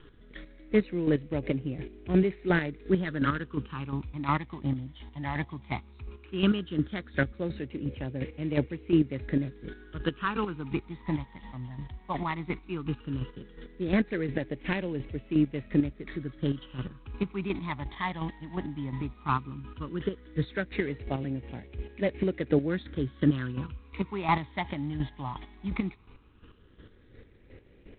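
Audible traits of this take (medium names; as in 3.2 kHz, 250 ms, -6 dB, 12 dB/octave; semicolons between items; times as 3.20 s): a quantiser's noise floor 10-bit, dither none; phasing stages 12, 0.15 Hz, lowest notch 450–1200 Hz; chopped level 2.8 Hz, depth 60%, duty 25%; G.726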